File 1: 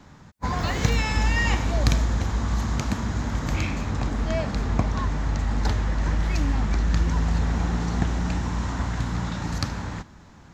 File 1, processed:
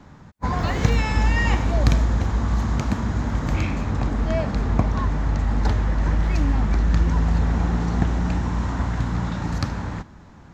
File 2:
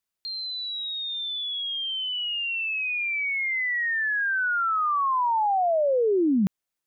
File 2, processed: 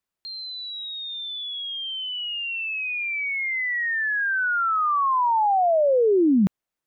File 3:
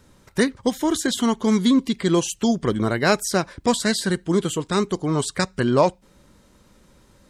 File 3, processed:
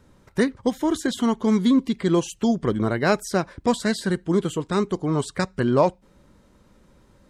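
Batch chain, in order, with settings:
high-shelf EQ 2,500 Hz −8 dB
loudness normalisation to −23 LKFS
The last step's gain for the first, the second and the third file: +3.0, +3.5, −0.5 decibels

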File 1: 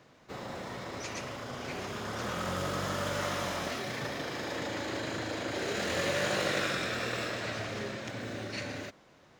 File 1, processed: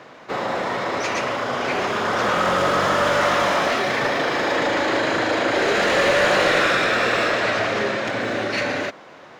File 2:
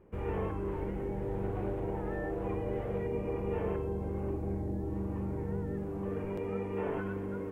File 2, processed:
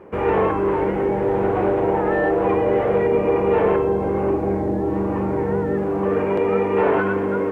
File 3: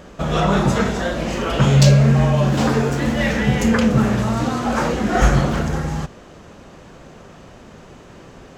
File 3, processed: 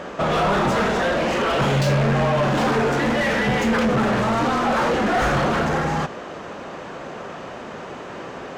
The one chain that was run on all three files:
mid-hump overdrive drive 31 dB, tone 1,500 Hz, clips at −1 dBFS
loudness normalisation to −20 LKFS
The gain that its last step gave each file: −3.0, −1.0, −10.0 decibels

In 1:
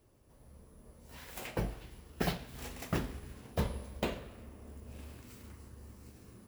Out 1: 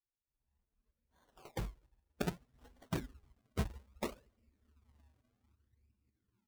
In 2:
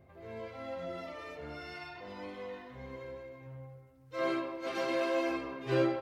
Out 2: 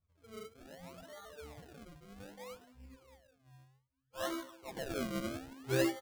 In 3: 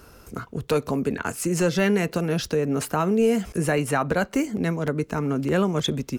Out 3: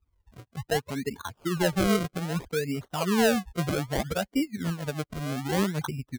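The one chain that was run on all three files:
spectral dynamics exaggerated over time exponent 2
high-frequency loss of the air 260 metres
sample-and-hold swept by an LFO 34×, swing 100% 0.63 Hz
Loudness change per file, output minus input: −2.5, −4.0, −4.5 LU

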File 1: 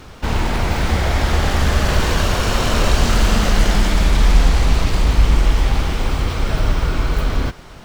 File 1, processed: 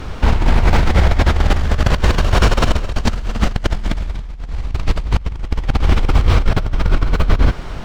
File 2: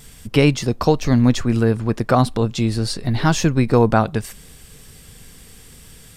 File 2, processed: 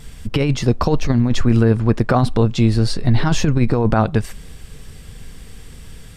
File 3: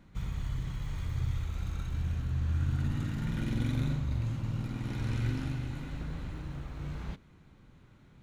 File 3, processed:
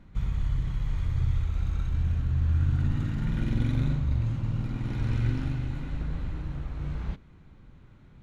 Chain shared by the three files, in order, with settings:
low-pass filter 3,900 Hz 6 dB per octave
low-shelf EQ 74 Hz +8.5 dB
compressor whose output falls as the input rises −14 dBFS, ratio −0.5
boost into a limiter +3 dB
level −1 dB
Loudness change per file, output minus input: +0.5, +1.0, +5.0 LU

